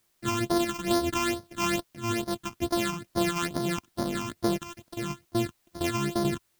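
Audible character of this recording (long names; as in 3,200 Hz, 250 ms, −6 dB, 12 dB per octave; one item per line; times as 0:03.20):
a buzz of ramps at a fixed pitch in blocks of 128 samples
phaser sweep stages 8, 2.3 Hz, lowest notch 520–2,600 Hz
a quantiser's noise floor 12 bits, dither triangular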